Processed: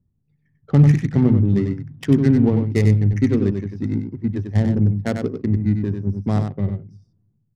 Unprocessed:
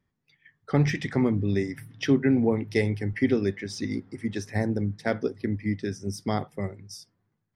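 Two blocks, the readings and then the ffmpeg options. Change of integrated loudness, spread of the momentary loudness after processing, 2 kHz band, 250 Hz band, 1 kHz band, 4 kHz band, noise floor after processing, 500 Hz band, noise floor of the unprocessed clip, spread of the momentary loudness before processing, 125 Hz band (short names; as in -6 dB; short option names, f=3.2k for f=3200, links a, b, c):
+8.0 dB, 10 LU, -2.5 dB, +7.5 dB, +0.5 dB, n/a, -68 dBFS, +2.5 dB, -78 dBFS, 10 LU, +12.0 dB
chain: -af "adynamicsmooth=sensitivity=2:basefreq=610,bass=f=250:g=12,treble=f=4k:g=9,aecho=1:1:95:0.501"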